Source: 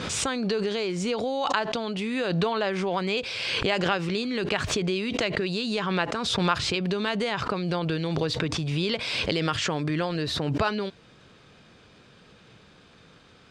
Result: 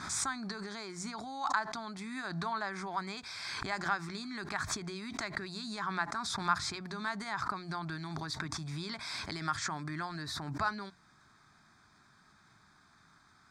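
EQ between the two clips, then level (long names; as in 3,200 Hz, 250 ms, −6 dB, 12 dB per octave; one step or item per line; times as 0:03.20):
low-shelf EQ 450 Hz −9 dB
mains-hum notches 60/120/180 Hz
phaser with its sweep stopped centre 1,200 Hz, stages 4
−2.5 dB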